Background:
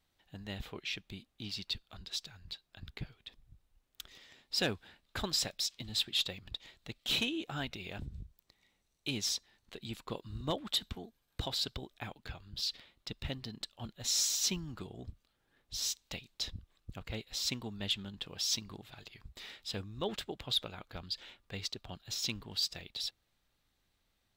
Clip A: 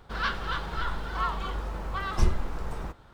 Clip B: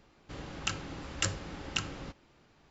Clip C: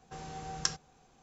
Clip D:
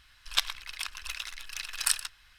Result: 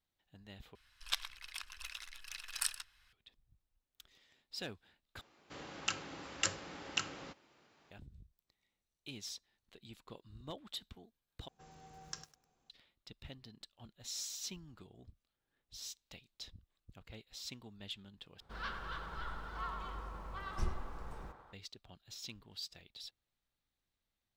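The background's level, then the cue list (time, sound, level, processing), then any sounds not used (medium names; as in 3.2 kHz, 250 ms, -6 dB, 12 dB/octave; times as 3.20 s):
background -11.5 dB
0.75 s: replace with D -9.5 dB
5.21 s: replace with B -2 dB + high-pass 380 Hz 6 dB/octave
11.48 s: replace with C -14.5 dB + bit-crushed delay 102 ms, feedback 35%, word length 7-bit, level -12 dB
18.40 s: replace with A -13.5 dB + band-passed feedback delay 102 ms, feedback 76%, level -5 dB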